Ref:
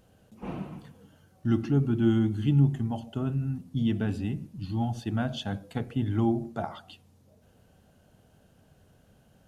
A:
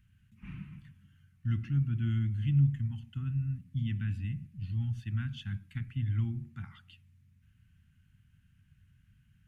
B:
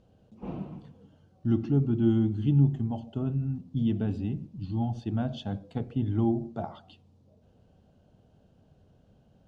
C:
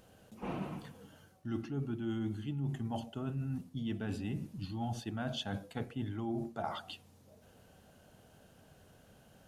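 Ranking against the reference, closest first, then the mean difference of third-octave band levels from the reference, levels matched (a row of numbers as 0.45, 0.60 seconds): B, C, A; 3.0, 5.5, 8.0 decibels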